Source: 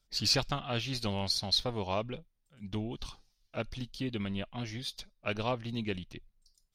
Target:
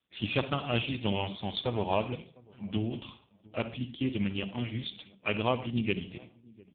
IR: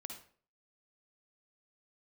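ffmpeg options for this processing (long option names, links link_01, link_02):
-filter_complex "[0:a]asettb=1/sr,asplit=3[link_01][link_02][link_03];[link_01]atrim=end=3.744[link_04];[link_02]atrim=start=3.74:end=4.42,asetpts=PTS-STARTPTS,afade=type=in:duration=0.004:curve=qsin,afade=type=out:start_time=0.676:duration=0.004:curve=qsin,acompressor=mode=upward:threshold=-45dB:ratio=2.5[link_05];[link_03]atrim=start=4.416[link_06];[link_04][link_05]acrossfade=duration=0.004:curve1=hsin:curve2=qsin[link_07];[link_07][link_06]acrossfade=duration=0.004:curve1=qsin:curve2=hsin,aexciter=amount=1.4:drive=5.3:freq=2400,asplit=2[link_08][link_09];[link_09]adelay=703,lowpass=frequency=820:poles=1,volume=-23.5dB,asplit=2[link_10][link_11];[link_11]adelay=703,lowpass=frequency=820:poles=1,volume=0.2[link_12];[link_08][link_10][link_12]amix=inputs=3:normalize=0,asplit=2[link_13][link_14];[1:a]atrim=start_sample=2205,lowshelf=frequency=97:gain=4[link_15];[link_14][link_15]afir=irnorm=-1:irlink=0,volume=2.5dB[link_16];[link_13][link_16]amix=inputs=2:normalize=0" -ar 8000 -c:a libopencore_amrnb -b:a 5150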